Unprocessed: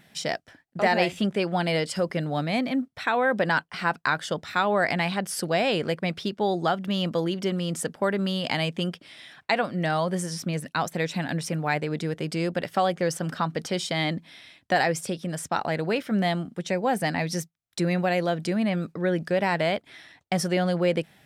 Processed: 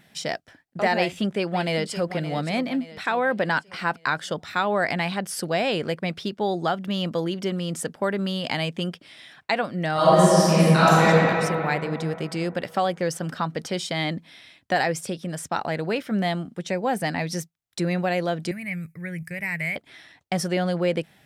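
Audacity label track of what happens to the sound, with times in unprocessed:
0.960000	2.080000	echo throw 570 ms, feedback 45%, level -12 dB
9.930000	11.040000	reverb throw, RT60 2.9 s, DRR -11.5 dB
18.510000	19.760000	FFT filter 160 Hz 0 dB, 240 Hz -16 dB, 870 Hz -17 dB, 1.4 kHz -12 dB, 2.2 kHz +8 dB, 3.3 kHz -19 dB, 12 kHz +11 dB

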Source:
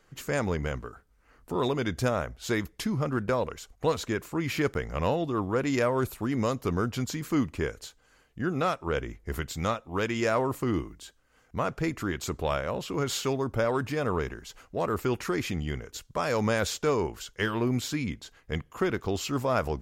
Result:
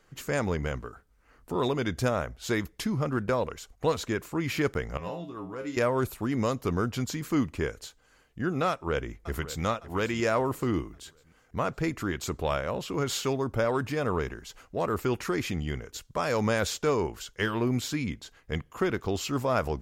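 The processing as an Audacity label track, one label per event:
4.970000	5.770000	feedback comb 59 Hz, decay 0.28 s, harmonics odd, mix 90%
8.690000	9.640000	echo throw 560 ms, feedback 45%, level -14.5 dB

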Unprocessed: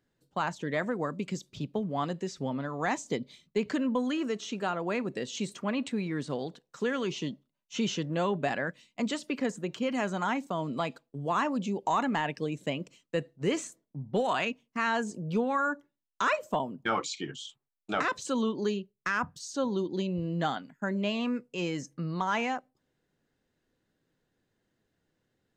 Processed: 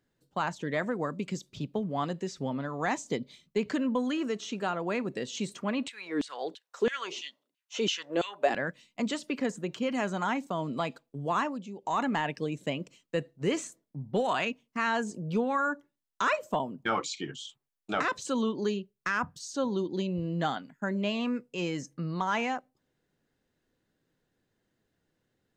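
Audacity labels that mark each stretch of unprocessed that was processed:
5.880000	8.550000	LFO high-pass saw down 3 Hz 250–3300 Hz
11.380000	12.020000	dip -10 dB, fades 0.24 s

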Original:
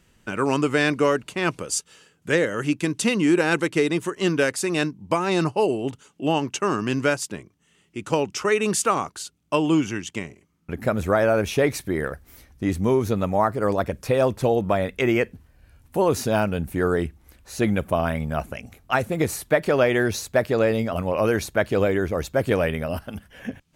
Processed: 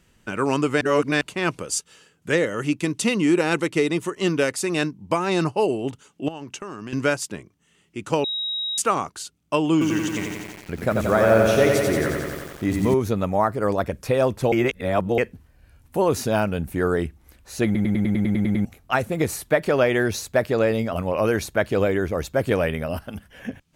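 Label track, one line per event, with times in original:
0.810000	1.210000	reverse
2.330000	4.650000	band-stop 1.6 kHz
6.280000	6.930000	compression 12:1, threshold -30 dBFS
8.240000	8.780000	bleep 3.81 kHz -24 dBFS
9.720000	12.940000	bit-crushed delay 89 ms, feedback 80%, word length 7-bit, level -3.5 dB
14.520000	15.180000	reverse
17.650000	17.650000	stutter in place 0.10 s, 10 plays

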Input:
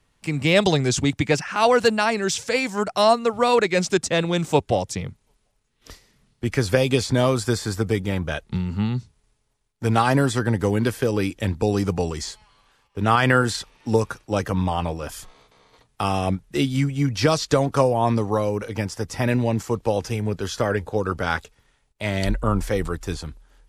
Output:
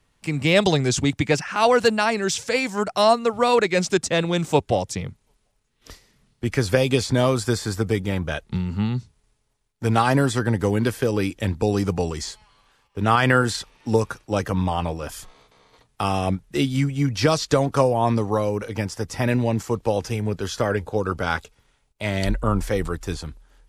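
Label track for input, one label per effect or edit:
20.720000	22.050000	band-stop 1.8 kHz

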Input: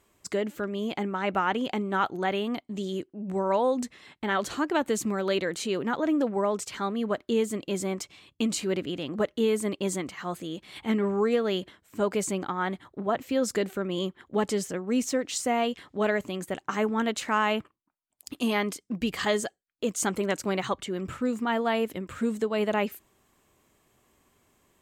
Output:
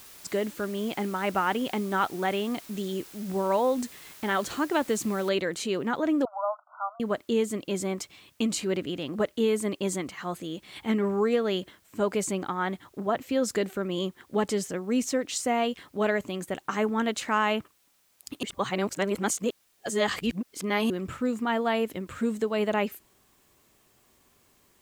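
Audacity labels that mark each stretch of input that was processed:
5.290000	5.290000	noise floor step -49 dB -67 dB
6.250000	7.000000	brick-wall FIR band-pass 590–1500 Hz
18.430000	20.900000	reverse

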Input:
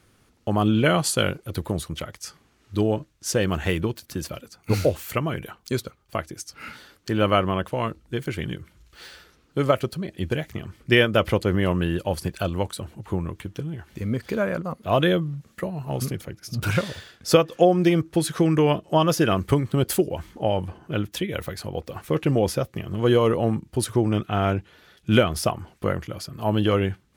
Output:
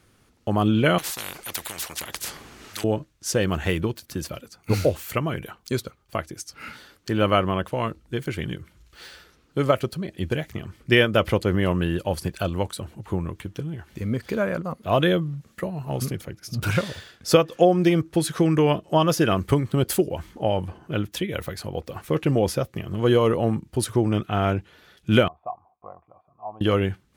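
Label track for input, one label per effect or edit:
0.980000	2.840000	spectrum-flattening compressor 10:1
25.280000	26.610000	cascade formant filter a

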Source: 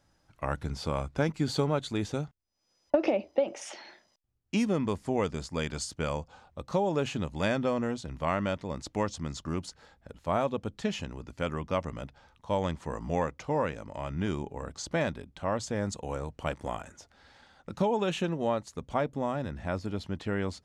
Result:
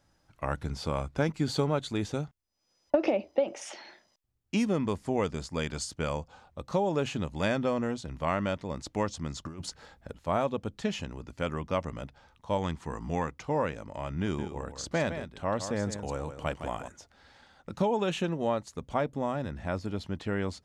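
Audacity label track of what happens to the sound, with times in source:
9.450000	10.140000	compressor with a negative ratio -36 dBFS, ratio -0.5
12.570000	13.480000	peaking EQ 570 Hz -9 dB 0.35 oct
14.220000	16.880000	delay 161 ms -9.5 dB

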